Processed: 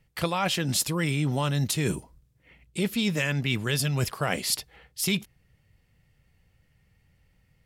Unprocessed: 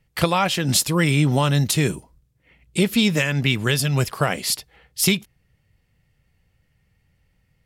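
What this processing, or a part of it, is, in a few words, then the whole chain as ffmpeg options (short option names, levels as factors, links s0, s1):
compression on the reversed sound: -af "areverse,acompressor=threshold=0.0708:ratio=6,areverse"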